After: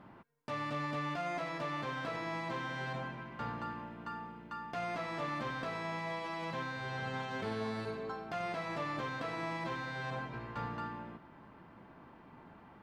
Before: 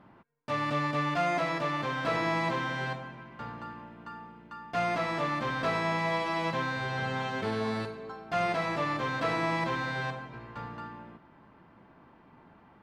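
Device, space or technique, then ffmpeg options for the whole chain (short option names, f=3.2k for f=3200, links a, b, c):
de-esser from a sidechain: -filter_complex "[0:a]asplit=2[a][b];[b]highpass=5.7k,apad=whole_len=565401[c];[a][c]sidechaincompress=threshold=-58dB:ratio=10:attack=1.9:release=44,volume=1dB"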